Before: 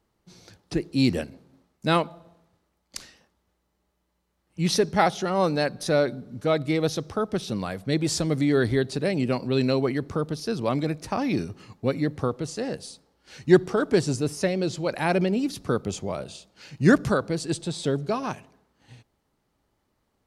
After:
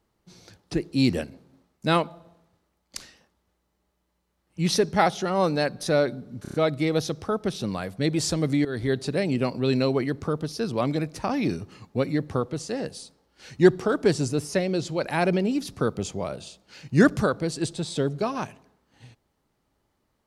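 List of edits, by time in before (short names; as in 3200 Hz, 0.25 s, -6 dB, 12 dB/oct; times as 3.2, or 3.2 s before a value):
6.42 stutter 0.03 s, 5 plays
8.53–8.84 fade in, from -16 dB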